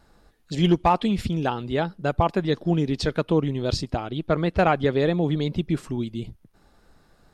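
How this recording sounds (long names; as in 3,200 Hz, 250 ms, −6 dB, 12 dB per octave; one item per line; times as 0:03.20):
background noise floor −60 dBFS
spectral slope −6.0 dB per octave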